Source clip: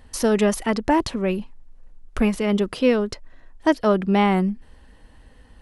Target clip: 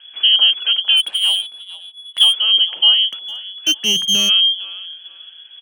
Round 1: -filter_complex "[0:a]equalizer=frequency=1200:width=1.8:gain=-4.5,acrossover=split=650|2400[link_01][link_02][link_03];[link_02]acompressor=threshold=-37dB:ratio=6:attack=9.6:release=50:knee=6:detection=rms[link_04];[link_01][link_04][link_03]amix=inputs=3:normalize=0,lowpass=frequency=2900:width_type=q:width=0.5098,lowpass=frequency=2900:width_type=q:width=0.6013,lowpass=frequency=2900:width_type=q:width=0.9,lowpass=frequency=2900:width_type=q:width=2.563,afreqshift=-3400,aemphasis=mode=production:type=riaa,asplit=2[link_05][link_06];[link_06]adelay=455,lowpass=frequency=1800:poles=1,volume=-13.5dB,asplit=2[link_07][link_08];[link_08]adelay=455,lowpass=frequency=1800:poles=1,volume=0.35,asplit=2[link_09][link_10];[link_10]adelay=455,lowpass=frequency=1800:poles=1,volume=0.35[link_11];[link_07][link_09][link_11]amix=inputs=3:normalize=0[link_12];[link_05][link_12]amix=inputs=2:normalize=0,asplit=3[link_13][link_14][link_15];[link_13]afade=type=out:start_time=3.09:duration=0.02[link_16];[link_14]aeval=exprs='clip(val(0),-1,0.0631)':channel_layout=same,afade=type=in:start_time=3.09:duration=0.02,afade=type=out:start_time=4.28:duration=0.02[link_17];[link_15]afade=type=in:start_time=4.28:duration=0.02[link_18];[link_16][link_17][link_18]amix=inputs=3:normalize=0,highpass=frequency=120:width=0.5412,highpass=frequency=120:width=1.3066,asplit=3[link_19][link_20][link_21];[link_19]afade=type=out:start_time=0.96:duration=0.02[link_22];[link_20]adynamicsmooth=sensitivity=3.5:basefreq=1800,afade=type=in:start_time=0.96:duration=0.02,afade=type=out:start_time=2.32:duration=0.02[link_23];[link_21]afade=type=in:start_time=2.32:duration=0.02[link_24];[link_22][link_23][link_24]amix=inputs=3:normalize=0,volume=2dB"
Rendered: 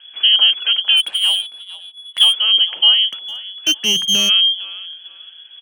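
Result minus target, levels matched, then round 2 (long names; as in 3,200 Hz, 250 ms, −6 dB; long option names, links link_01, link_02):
downward compressor: peak gain reduction −7.5 dB
-filter_complex "[0:a]equalizer=frequency=1200:width=1.8:gain=-4.5,acrossover=split=650|2400[link_01][link_02][link_03];[link_02]acompressor=threshold=-46dB:ratio=6:attack=9.6:release=50:knee=6:detection=rms[link_04];[link_01][link_04][link_03]amix=inputs=3:normalize=0,lowpass=frequency=2900:width_type=q:width=0.5098,lowpass=frequency=2900:width_type=q:width=0.6013,lowpass=frequency=2900:width_type=q:width=0.9,lowpass=frequency=2900:width_type=q:width=2.563,afreqshift=-3400,aemphasis=mode=production:type=riaa,asplit=2[link_05][link_06];[link_06]adelay=455,lowpass=frequency=1800:poles=1,volume=-13.5dB,asplit=2[link_07][link_08];[link_08]adelay=455,lowpass=frequency=1800:poles=1,volume=0.35,asplit=2[link_09][link_10];[link_10]adelay=455,lowpass=frequency=1800:poles=1,volume=0.35[link_11];[link_07][link_09][link_11]amix=inputs=3:normalize=0[link_12];[link_05][link_12]amix=inputs=2:normalize=0,asplit=3[link_13][link_14][link_15];[link_13]afade=type=out:start_time=3.09:duration=0.02[link_16];[link_14]aeval=exprs='clip(val(0),-1,0.0631)':channel_layout=same,afade=type=in:start_time=3.09:duration=0.02,afade=type=out:start_time=4.28:duration=0.02[link_17];[link_15]afade=type=in:start_time=4.28:duration=0.02[link_18];[link_16][link_17][link_18]amix=inputs=3:normalize=0,highpass=frequency=120:width=0.5412,highpass=frequency=120:width=1.3066,asplit=3[link_19][link_20][link_21];[link_19]afade=type=out:start_time=0.96:duration=0.02[link_22];[link_20]adynamicsmooth=sensitivity=3.5:basefreq=1800,afade=type=in:start_time=0.96:duration=0.02,afade=type=out:start_time=2.32:duration=0.02[link_23];[link_21]afade=type=in:start_time=2.32:duration=0.02[link_24];[link_22][link_23][link_24]amix=inputs=3:normalize=0,volume=2dB"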